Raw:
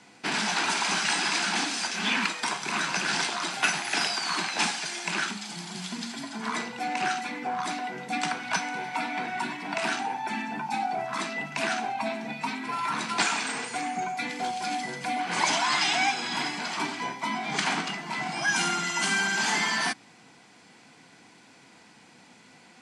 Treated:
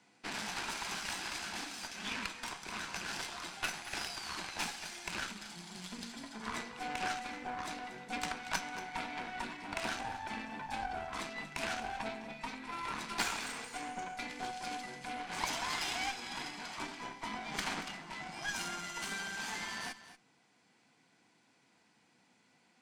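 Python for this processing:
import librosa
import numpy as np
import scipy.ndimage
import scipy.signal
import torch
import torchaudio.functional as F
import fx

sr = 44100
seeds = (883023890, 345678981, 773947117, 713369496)

y = fx.rider(x, sr, range_db=3, speed_s=2.0)
y = fx.cheby_harmonics(y, sr, harmonics=(3, 8), levels_db=(-14, -25), full_scale_db=-8.0)
y = y + 10.0 ** (-14.0 / 20.0) * np.pad(y, (int(233 * sr / 1000.0), 0))[:len(y)]
y = y * librosa.db_to_amplitude(-5.5)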